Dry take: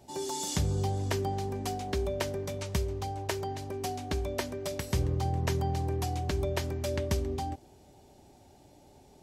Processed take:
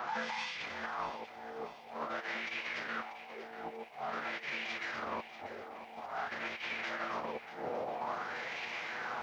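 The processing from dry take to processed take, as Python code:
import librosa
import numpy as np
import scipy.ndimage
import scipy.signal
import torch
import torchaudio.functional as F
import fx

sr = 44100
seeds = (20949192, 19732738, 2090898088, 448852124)

p1 = fx.delta_mod(x, sr, bps=64000, step_db=-37.0)
p2 = fx.high_shelf(p1, sr, hz=5300.0, db=4.0)
p3 = fx.room_shoebox(p2, sr, seeds[0], volume_m3=550.0, walls='furnished', distance_m=1.4)
p4 = np.clip(10.0 ** (32.0 / 20.0) * p3, -1.0, 1.0) / 10.0 ** (32.0 / 20.0)
p5 = p4 + fx.echo_wet_highpass(p4, sr, ms=93, feedback_pct=80, hz=3400.0, wet_db=-18, dry=0)
p6 = fx.wah_lfo(p5, sr, hz=0.49, low_hz=580.0, high_hz=2300.0, q=3.7)
p7 = scipy.signal.sosfilt(scipy.signal.butter(2, 190.0, 'highpass', fs=sr, output='sos'), p6)
p8 = fx.over_compress(p7, sr, threshold_db=-52.0, ratio=-0.5)
p9 = fx.air_absorb(p8, sr, metres=110.0)
p10 = fx.pitch_keep_formants(p9, sr, semitones=-9.5)
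p11 = fx.echo_crushed(p10, sr, ms=639, feedback_pct=55, bits=13, wet_db=-12.5)
y = p11 * librosa.db_to_amplitude(13.5)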